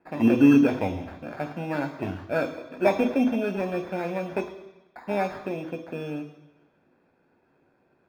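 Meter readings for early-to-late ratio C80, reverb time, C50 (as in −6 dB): 13.0 dB, 1.1 s, 10.5 dB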